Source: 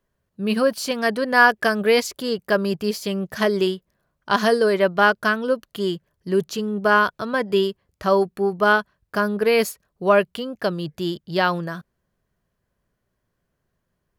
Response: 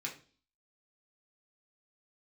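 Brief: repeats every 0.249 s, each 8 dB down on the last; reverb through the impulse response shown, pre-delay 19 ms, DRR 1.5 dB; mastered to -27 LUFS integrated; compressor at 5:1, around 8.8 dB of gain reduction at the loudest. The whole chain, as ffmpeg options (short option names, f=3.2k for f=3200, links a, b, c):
-filter_complex "[0:a]acompressor=threshold=-19dB:ratio=5,aecho=1:1:249|498|747|996|1245:0.398|0.159|0.0637|0.0255|0.0102,asplit=2[a][b];[1:a]atrim=start_sample=2205,adelay=19[c];[b][c]afir=irnorm=-1:irlink=0,volume=-2.5dB[d];[a][d]amix=inputs=2:normalize=0,volume=-3.5dB"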